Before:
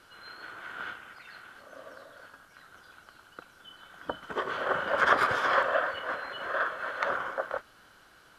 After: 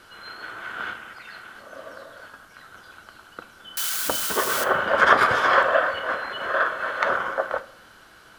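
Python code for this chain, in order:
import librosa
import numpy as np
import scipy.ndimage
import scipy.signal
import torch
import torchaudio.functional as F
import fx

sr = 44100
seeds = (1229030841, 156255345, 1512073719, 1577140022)

y = fx.crossing_spikes(x, sr, level_db=-23.0, at=(3.77, 4.64))
y = fx.rev_fdn(y, sr, rt60_s=0.65, lf_ratio=1.0, hf_ratio=0.75, size_ms=27.0, drr_db=12.5)
y = y * 10.0 ** (7.0 / 20.0)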